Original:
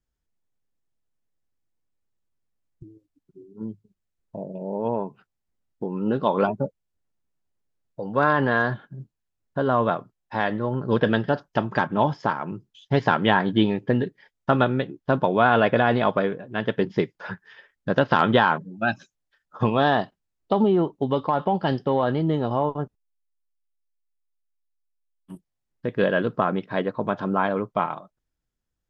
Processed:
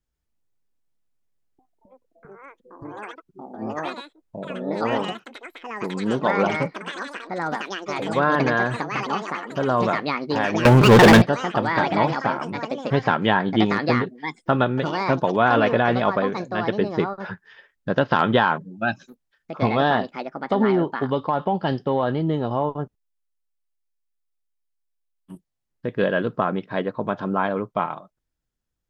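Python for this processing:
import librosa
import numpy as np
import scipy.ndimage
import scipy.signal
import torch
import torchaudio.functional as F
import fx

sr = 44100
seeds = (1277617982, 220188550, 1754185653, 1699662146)

y = fx.echo_pitch(x, sr, ms=134, semitones=5, count=3, db_per_echo=-6.0)
y = fx.leveller(y, sr, passes=5, at=(10.65, 11.22))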